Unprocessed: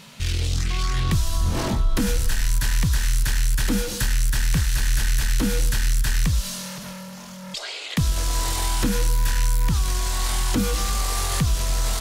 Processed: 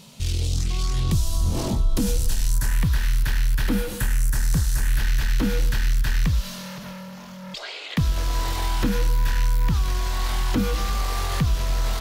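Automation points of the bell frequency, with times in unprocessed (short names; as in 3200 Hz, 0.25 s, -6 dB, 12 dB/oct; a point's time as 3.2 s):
bell -11.5 dB 1.3 oct
2.46 s 1700 Hz
2.89 s 7900 Hz
3.65 s 7900 Hz
4.68 s 2200 Hz
5.03 s 8800 Hz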